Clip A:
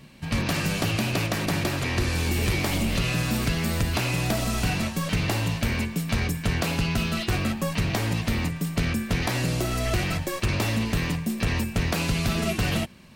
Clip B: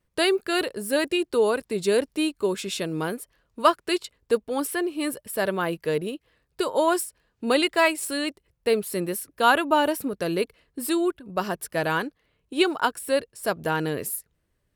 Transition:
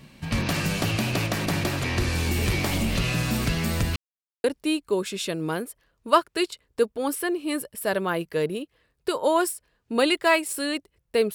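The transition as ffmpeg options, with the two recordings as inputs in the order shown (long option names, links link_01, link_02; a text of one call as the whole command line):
ffmpeg -i cue0.wav -i cue1.wav -filter_complex "[0:a]apad=whole_dur=11.34,atrim=end=11.34,asplit=2[link_01][link_02];[link_01]atrim=end=3.96,asetpts=PTS-STARTPTS,afade=type=out:start_time=3.956:duration=0.004:curve=hsin[link_03];[link_02]atrim=start=3.96:end=4.44,asetpts=PTS-STARTPTS,volume=0[link_04];[1:a]atrim=start=1.96:end=8.86,asetpts=PTS-STARTPTS,afade=type=in:duration=0.004:curve=hsin[link_05];[link_03][link_04][link_05]concat=n=3:v=0:a=1" out.wav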